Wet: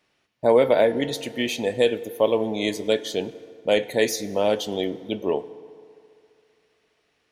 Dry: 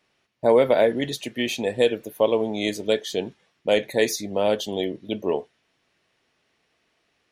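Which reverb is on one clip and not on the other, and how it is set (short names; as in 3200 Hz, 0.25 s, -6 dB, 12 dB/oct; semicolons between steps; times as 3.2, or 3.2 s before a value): FDN reverb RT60 2.5 s, low-frequency decay 0.75×, high-frequency decay 0.55×, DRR 15 dB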